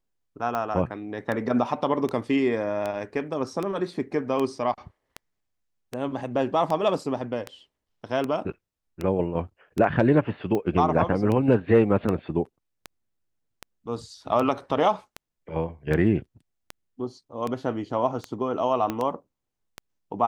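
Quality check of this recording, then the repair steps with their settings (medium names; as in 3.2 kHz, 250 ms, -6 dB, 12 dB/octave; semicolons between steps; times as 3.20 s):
tick 78 rpm -16 dBFS
18.90 s: pop -14 dBFS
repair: de-click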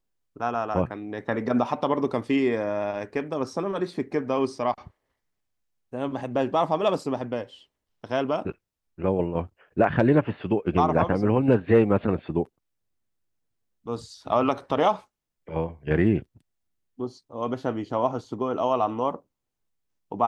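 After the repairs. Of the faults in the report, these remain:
18.90 s: pop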